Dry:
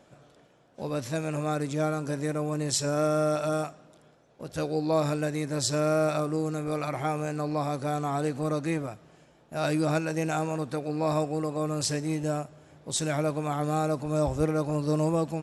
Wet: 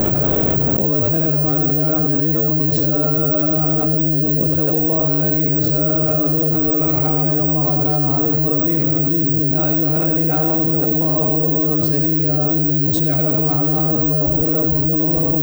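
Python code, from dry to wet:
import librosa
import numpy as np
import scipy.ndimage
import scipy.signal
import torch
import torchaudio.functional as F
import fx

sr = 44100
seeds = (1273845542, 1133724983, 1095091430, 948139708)

y = fx.peak_eq(x, sr, hz=360.0, db=6.5, octaves=1.3)
y = fx.rider(y, sr, range_db=10, speed_s=0.5)
y = fx.riaa(y, sr, side='playback')
y = fx.echo_split(y, sr, split_hz=420.0, low_ms=445, high_ms=88, feedback_pct=52, wet_db=-3.5)
y = (np.kron(scipy.signal.resample_poly(y, 1, 2), np.eye(2)[0]) * 2)[:len(y)]
y = fx.env_flatten(y, sr, amount_pct=100)
y = F.gain(torch.from_numpy(y), -6.5).numpy()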